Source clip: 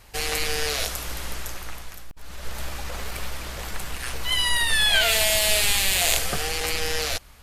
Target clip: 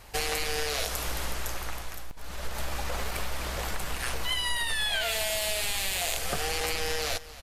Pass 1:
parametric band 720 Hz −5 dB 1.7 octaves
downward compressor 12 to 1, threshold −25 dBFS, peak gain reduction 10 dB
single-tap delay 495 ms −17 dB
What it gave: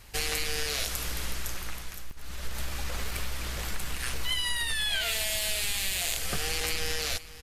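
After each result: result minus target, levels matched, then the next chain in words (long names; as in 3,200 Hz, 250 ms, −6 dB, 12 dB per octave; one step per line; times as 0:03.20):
echo 226 ms late; 1,000 Hz band −5.5 dB
parametric band 720 Hz −5 dB 1.7 octaves
downward compressor 12 to 1, threshold −25 dBFS, peak gain reduction 10 dB
single-tap delay 269 ms −17 dB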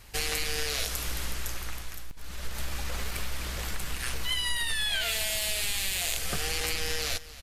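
1,000 Hz band −5.5 dB
parametric band 720 Hz +3.5 dB 1.7 octaves
downward compressor 12 to 1, threshold −25 dBFS, peak gain reduction 11 dB
single-tap delay 269 ms −17 dB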